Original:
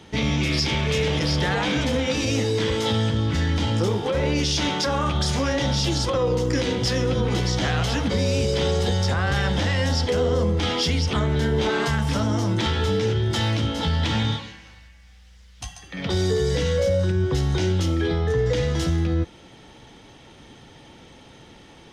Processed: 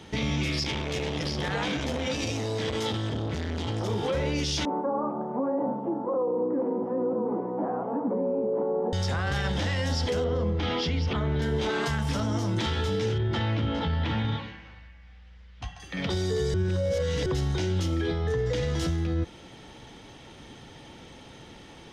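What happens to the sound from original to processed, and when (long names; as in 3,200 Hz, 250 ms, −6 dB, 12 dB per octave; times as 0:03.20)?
0:00.63–0:03.90: saturating transformer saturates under 440 Hz
0:04.65–0:08.93: elliptic band-pass filter 220–1,000 Hz, stop band 60 dB
0:10.24–0:11.42: high-frequency loss of the air 180 metres
0:13.18–0:15.80: low-pass filter 2,600 Hz
0:16.54–0:17.26: reverse
whole clip: brickwall limiter −20 dBFS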